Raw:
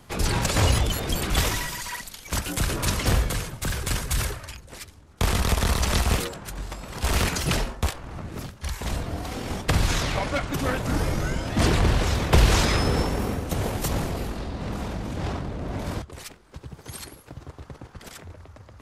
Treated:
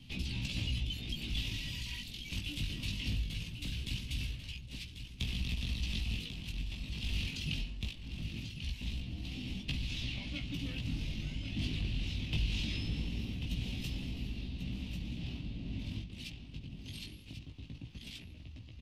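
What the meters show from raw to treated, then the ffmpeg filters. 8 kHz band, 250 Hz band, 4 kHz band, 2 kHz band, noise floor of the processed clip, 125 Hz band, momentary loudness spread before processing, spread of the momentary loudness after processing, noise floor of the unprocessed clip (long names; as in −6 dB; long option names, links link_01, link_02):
−21.5 dB, −12.0 dB, −9.0 dB, −14.0 dB, −50 dBFS, −12.0 dB, 20 LU, 10 LU, −50 dBFS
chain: -filter_complex "[0:a]firequalizer=gain_entry='entry(260,0);entry(430,-17);entry(1400,-23);entry(2700,7);entry(7300,-13)':delay=0.05:min_phase=1,acompressor=threshold=-41dB:ratio=2,flanger=delay=15.5:depth=4.5:speed=0.21,asplit=2[link_01][link_02];[link_02]aecho=0:1:1091:0.355[link_03];[link_01][link_03]amix=inputs=2:normalize=0,volume=1dB"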